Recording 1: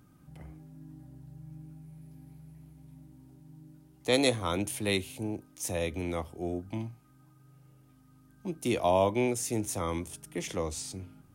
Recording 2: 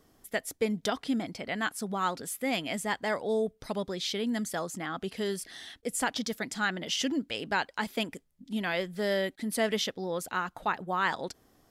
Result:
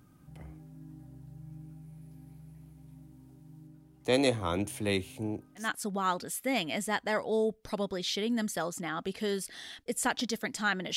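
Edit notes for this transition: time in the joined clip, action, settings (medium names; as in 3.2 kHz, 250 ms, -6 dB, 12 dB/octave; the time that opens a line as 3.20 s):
recording 1
3.67–5.71 s: treble shelf 2.8 kHz -5.5 dB
5.63 s: go over to recording 2 from 1.60 s, crossfade 0.16 s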